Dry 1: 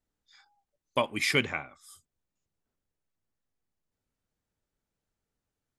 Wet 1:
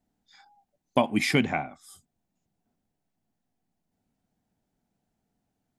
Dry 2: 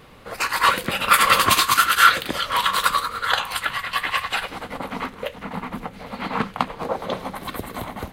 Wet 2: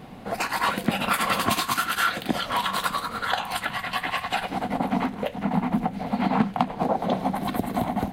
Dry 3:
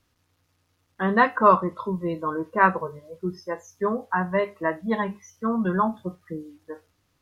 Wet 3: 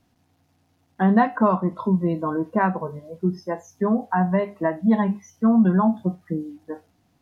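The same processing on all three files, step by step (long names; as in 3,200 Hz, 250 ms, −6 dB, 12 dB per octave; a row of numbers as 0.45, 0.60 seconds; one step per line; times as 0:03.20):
parametric band 1,200 Hz −5 dB 0.26 octaves
downward compressor 2 to 1, threshold −27 dBFS
hollow resonant body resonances 210/710 Hz, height 13 dB, ringing for 20 ms
normalise the peak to −6 dBFS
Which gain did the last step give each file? +2.0, −1.5, −0.5 decibels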